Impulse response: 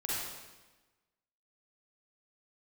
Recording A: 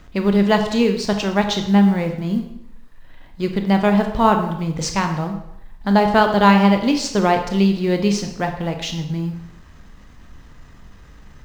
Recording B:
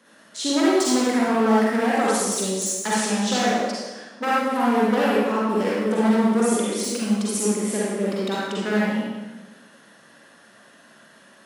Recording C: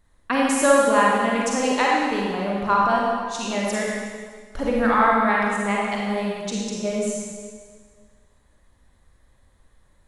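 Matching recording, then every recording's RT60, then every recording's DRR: B; 0.70 s, 1.2 s, 1.7 s; 4.5 dB, -7.5 dB, -4.0 dB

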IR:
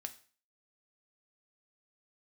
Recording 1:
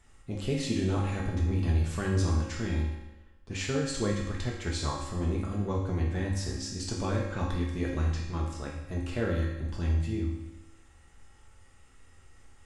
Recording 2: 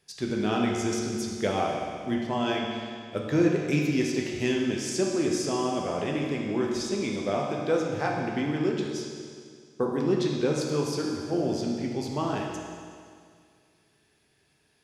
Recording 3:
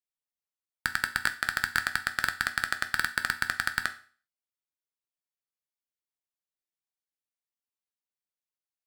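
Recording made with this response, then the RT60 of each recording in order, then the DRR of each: 3; 1.0 s, 2.1 s, 0.40 s; -4.0 dB, -1.5 dB, 7.5 dB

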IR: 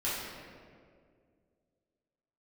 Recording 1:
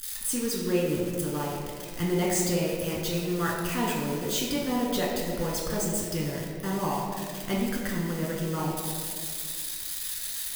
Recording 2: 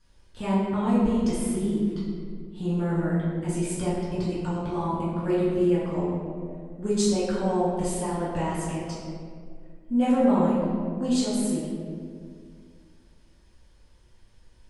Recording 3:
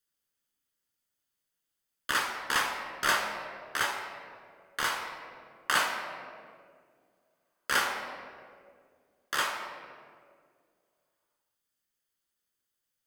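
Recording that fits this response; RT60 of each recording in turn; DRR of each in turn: 2; 2.1 s, 2.1 s, 2.1 s; -4.0 dB, -10.5 dB, 1.0 dB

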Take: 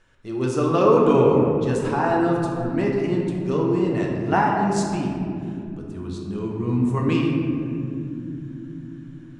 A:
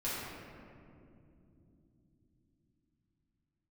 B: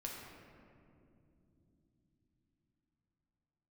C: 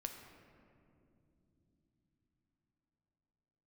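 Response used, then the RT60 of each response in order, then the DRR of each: B; no single decay rate, 2.8 s, no single decay rate; -10.0 dB, -2.0 dB, 4.0 dB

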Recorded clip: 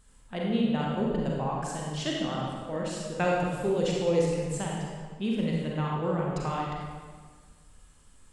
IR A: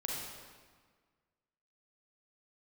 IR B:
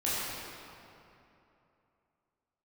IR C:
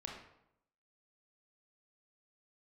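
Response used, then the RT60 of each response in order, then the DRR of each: A; 1.6 s, 2.9 s, 0.80 s; -3.0 dB, -10.0 dB, -1.0 dB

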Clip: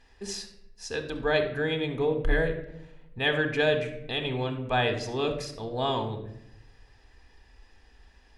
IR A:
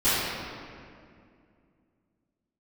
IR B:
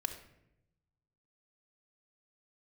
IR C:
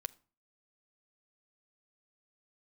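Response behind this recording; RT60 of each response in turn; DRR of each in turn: B; 2.3 s, 0.85 s, no single decay rate; -18.5 dB, 6.5 dB, 8.5 dB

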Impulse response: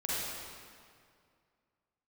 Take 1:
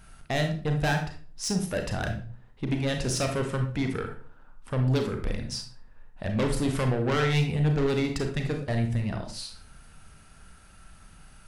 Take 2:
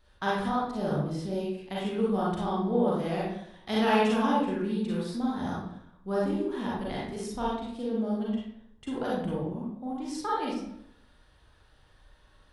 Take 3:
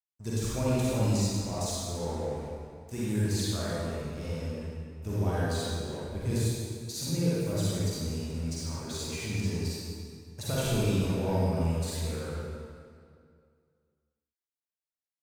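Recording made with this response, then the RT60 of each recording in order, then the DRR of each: 3; 0.45 s, 0.75 s, 2.2 s; 4.0 dB, -6.5 dB, -8.5 dB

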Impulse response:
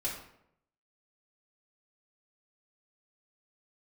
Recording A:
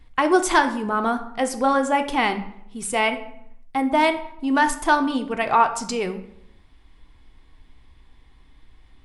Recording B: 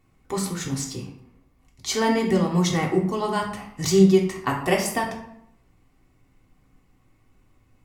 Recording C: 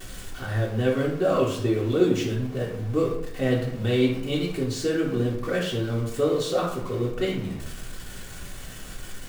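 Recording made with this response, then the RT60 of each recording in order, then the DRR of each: C; 0.75 s, 0.75 s, 0.75 s; 6.5 dB, -2.0 dB, -6.5 dB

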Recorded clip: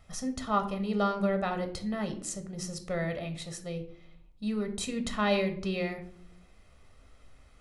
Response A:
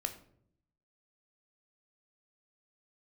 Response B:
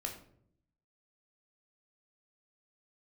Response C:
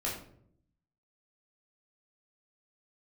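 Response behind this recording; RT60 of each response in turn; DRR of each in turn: A; 0.65 s, 0.65 s, 0.65 s; 7.0 dB, 2.0 dB, -5.0 dB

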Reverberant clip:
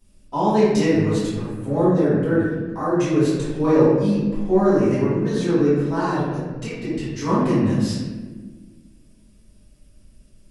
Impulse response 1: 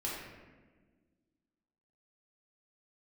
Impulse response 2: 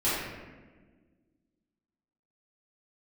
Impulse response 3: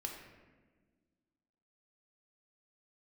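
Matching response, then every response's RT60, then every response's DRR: 2; 1.4 s, 1.4 s, 1.4 s; -6.0 dB, -12.5 dB, 1.0 dB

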